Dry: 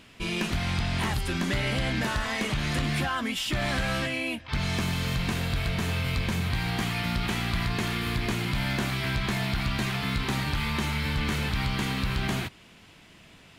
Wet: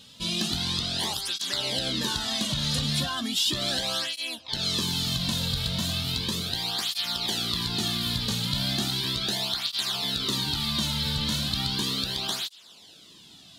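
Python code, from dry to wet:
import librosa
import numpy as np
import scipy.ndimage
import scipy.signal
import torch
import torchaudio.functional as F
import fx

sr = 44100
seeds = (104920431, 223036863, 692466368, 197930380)

y = fx.high_shelf_res(x, sr, hz=2900.0, db=8.5, q=3.0)
y = fx.flanger_cancel(y, sr, hz=0.36, depth_ms=3.0)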